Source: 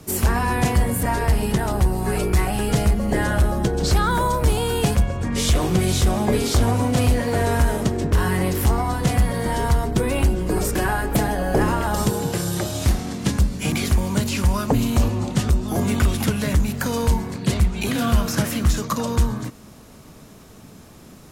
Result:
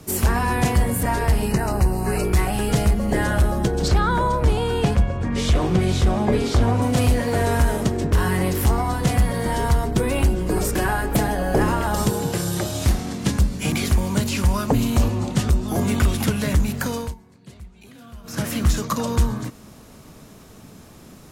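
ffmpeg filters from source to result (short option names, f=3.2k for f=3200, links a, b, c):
-filter_complex "[0:a]asettb=1/sr,asplit=3[a][b][c];[a]atrim=end=1.484[d];[b]atrim=start=1.48:end=2.25,asetpts=PTS-STARTPTS,afade=t=in:d=0.004:c=qsin,afade=t=out:st=0.766:d=0.004:c=qsin,asuperstop=centerf=3400:order=8:qfactor=3.8[e];[c]atrim=start=2.246[f];[d][e]acrossfade=d=0.004:c1=hsin:c2=qsin[g];[g][f]acrossfade=d=0.004:c1=qsin:c2=hsin,asettb=1/sr,asplit=3[h][i][j];[h]atrim=end=3.884[k];[i]atrim=start=3.88:end=6.82,asetpts=PTS-STARTPTS,afade=t=in:d=0.004:c=qsin,afade=t=out:st=2.936:d=0.004:c=qsin,aemphasis=mode=reproduction:type=50fm[l];[j]atrim=start=6.816[m];[k][l]acrossfade=d=0.004:c1=hsin:c2=qsin[n];[n][m]acrossfade=d=0.004:c1=qsin:c2=hsin,asplit=3[o][p][q];[o]atrim=end=17.15,asetpts=PTS-STARTPTS,afade=t=out:st=16.72:d=0.43:c=qsin:silence=0.0749894[r];[p]atrim=start=17.15:end=18.23,asetpts=PTS-STARTPTS,volume=-22.5dB[s];[q]atrim=start=18.23,asetpts=PTS-STARTPTS,afade=t=in:d=0.43:c=qsin:silence=0.0749894[t];[r][s][t]concat=n=3:v=0:a=1"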